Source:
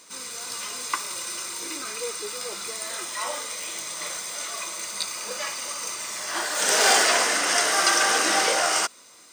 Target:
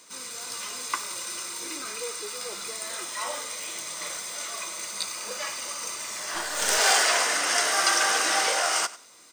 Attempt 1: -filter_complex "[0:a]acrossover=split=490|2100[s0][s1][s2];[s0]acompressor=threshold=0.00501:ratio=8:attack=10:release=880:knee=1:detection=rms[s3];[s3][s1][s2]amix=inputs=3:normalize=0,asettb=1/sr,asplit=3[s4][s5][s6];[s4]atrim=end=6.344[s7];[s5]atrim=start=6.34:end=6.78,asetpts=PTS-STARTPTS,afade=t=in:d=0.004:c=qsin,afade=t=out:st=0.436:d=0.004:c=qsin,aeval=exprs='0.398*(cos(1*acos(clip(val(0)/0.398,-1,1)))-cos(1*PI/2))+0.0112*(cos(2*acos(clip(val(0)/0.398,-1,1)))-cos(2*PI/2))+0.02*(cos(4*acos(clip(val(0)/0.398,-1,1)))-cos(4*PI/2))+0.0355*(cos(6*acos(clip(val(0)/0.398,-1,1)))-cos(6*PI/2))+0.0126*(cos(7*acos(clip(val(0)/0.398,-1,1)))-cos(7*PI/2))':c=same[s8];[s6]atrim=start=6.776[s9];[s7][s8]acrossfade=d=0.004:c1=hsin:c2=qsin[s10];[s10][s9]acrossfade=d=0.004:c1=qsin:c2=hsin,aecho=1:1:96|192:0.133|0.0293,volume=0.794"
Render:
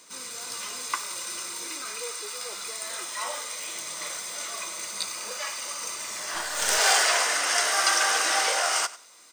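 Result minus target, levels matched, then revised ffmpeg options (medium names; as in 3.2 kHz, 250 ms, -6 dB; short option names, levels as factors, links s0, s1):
compression: peak gain reduction +8 dB
-filter_complex "[0:a]acrossover=split=490|2100[s0][s1][s2];[s0]acompressor=threshold=0.0141:ratio=8:attack=10:release=880:knee=1:detection=rms[s3];[s3][s1][s2]amix=inputs=3:normalize=0,asettb=1/sr,asplit=3[s4][s5][s6];[s4]atrim=end=6.344[s7];[s5]atrim=start=6.34:end=6.78,asetpts=PTS-STARTPTS,afade=t=in:d=0.004:c=qsin,afade=t=out:st=0.436:d=0.004:c=qsin,aeval=exprs='0.398*(cos(1*acos(clip(val(0)/0.398,-1,1)))-cos(1*PI/2))+0.0112*(cos(2*acos(clip(val(0)/0.398,-1,1)))-cos(2*PI/2))+0.02*(cos(4*acos(clip(val(0)/0.398,-1,1)))-cos(4*PI/2))+0.0355*(cos(6*acos(clip(val(0)/0.398,-1,1)))-cos(6*PI/2))+0.0126*(cos(7*acos(clip(val(0)/0.398,-1,1)))-cos(7*PI/2))':c=same[s8];[s6]atrim=start=6.776[s9];[s7][s8]acrossfade=d=0.004:c1=hsin:c2=qsin[s10];[s10][s9]acrossfade=d=0.004:c1=qsin:c2=hsin,aecho=1:1:96|192:0.133|0.0293,volume=0.794"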